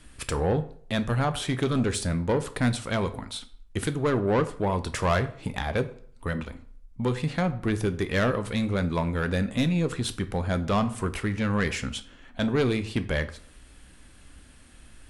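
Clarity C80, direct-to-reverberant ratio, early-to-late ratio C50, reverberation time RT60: 18.5 dB, 10.0 dB, 15.5 dB, 0.55 s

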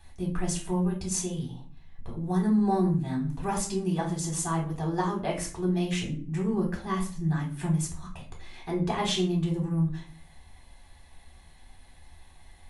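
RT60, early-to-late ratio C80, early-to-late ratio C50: 0.40 s, 14.0 dB, 8.5 dB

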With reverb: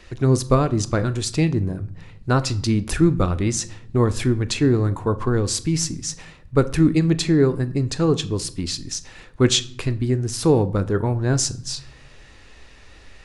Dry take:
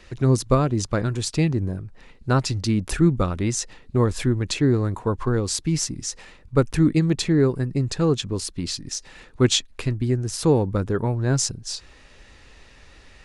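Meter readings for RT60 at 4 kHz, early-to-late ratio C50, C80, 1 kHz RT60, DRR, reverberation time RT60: 0.45 s, 18.0 dB, 21.5 dB, 0.60 s, 12.0 dB, 0.60 s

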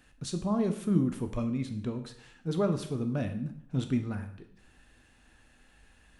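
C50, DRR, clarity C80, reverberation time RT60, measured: 10.5 dB, 6.5 dB, 13.5 dB, 0.65 s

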